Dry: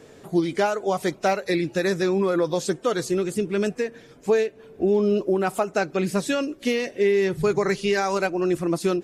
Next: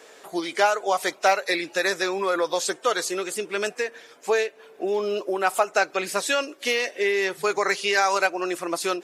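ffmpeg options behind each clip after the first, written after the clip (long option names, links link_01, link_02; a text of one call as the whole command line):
ffmpeg -i in.wav -af "highpass=690,volume=5.5dB" out.wav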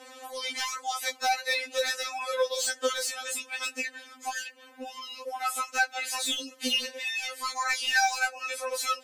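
ffmpeg -i in.wav -filter_complex "[0:a]acrossover=split=2000[link_01][link_02];[link_01]acompressor=threshold=-31dB:ratio=6[link_03];[link_02]asoftclip=type=tanh:threshold=-24.5dB[link_04];[link_03][link_04]amix=inputs=2:normalize=0,afftfilt=real='re*3.46*eq(mod(b,12),0)':imag='im*3.46*eq(mod(b,12),0)':win_size=2048:overlap=0.75,volume=3.5dB" out.wav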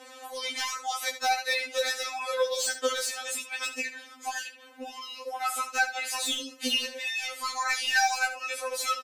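ffmpeg -i in.wav -af "aecho=1:1:74:0.251" out.wav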